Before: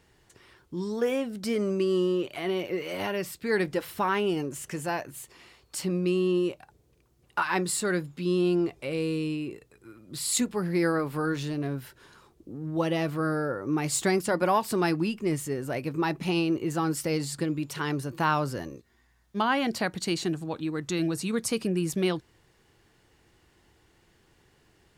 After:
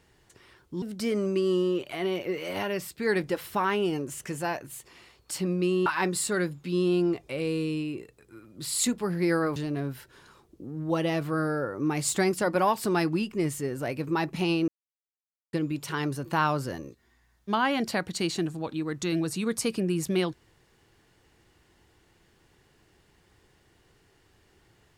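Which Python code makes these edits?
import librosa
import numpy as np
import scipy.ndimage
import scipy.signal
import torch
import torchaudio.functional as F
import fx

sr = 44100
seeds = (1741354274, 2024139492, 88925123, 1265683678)

y = fx.edit(x, sr, fx.cut(start_s=0.82, length_s=0.44),
    fx.cut(start_s=6.3, length_s=1.09),
    fx.cut(start_s=11.09, length_s=0.34),
    fx.silence(start_s=16.55, length_s=0.85), tone=tone)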